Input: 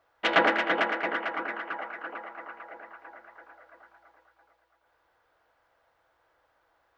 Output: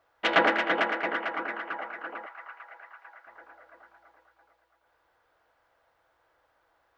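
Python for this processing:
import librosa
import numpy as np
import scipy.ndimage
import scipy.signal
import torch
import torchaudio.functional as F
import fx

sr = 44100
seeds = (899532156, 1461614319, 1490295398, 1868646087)

y = fx.highpass(x, sr, hz=990.0, slope=12, at=(2.26, 3.27))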